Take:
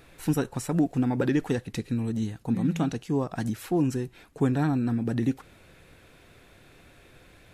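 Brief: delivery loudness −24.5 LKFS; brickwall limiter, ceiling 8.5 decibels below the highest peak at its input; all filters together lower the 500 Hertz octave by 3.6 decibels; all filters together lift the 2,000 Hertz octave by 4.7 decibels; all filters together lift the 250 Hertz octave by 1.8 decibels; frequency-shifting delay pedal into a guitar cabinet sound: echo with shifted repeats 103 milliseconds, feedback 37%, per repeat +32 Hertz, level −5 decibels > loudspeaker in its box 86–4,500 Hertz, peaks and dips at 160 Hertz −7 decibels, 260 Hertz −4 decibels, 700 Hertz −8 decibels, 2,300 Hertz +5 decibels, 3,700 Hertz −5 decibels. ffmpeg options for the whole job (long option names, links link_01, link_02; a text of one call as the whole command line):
ffmpeg -i in.wav -filter_complex "[0:a]equalizer=frequency=250:width_type=o:gain=8,equalizer=frequency=500:width_type=o:gain=-8,equalizer=frequency=2000:width_type=o:gain=5,alimiter=limit=-18.5dB:level=0:latency=1,asplit=6[link_01][link_02][link_03][link_04][link_05][link_06];[link_02]adelay=103,afreqshift=32,volume=-5dB[link_07];[link_03]adelay=206,afreqshift=64,volume=-13.6dB[link_08];[link_04]adelay=309,afreqshift=96,volume=-22.3dB[link_09];[link_05]adelay=412,afreqshift=128,volume=-30.9dB[link_10];[link_06]adelay=515,afreqshift=160,volume=-39.5dB[link_11];[link_01][link_07][link_08][link_09][link_10][link_11]amix=inputs=6:normalize=0,highpass=86,equalizer=frequency=160:width_type=q:width=4:gain=-7,equalizer=frequency=260:width_type=q:width=4:gain=-4,equalizer=frequency=700:width_type=q:width=4:gain=-8,equalizer=frequency=2300:width_type=q:width=4:gain=5,equalizer=frequency=3700:width_type=q:width=4:gain=-5,lowpass=frequency=4500:width=0.5412,lowpass=frequency=4500:width=1.3066,volume=5dB" out.wav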